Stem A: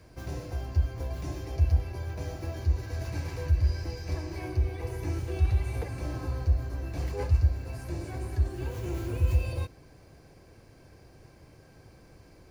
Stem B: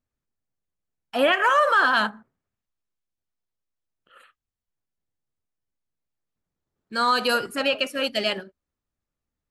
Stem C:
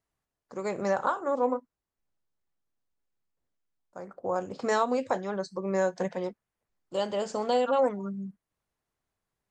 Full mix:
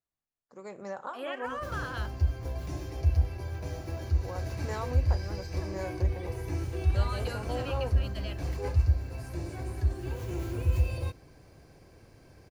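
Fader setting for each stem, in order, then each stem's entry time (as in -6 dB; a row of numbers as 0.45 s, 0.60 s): -1.0 dB, -19.0 dB, -11.5 dB; 1.45 s, 0.00 s, 0.00 s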